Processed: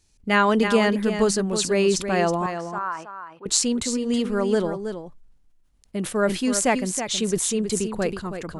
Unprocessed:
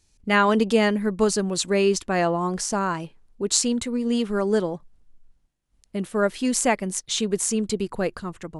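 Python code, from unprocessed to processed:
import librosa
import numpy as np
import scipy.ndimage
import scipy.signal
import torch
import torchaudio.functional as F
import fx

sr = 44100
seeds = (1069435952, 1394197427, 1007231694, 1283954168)

y = fx.bandpass_q(x, sr, hz=1200.0, q=2.1, at=(2.46, 3.46))
y = y + 10.0 ** (-9.0 / 20.0) * np.pad(y, (int(323 * sr / 1000.0), 0))[:len(y)]
y = fx.sustainer(y, sr, db_per_s=110.0)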